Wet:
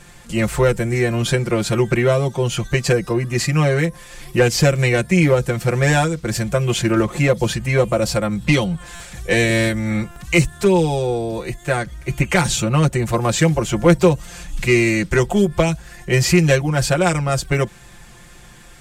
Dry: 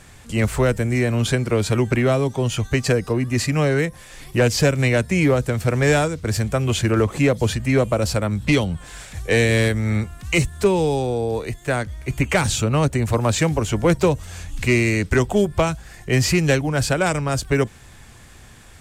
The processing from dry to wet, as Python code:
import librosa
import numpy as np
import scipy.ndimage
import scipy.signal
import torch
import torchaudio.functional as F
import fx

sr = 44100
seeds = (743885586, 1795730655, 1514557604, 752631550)

y = x + 0.84 * np.pad(x, (int(5.7 * sr / 1000.0), 0))[:len(x)]
y = fx.buffer_glitch(y, sr, at_s=(8.95, 10.11), block=256, repeats=8)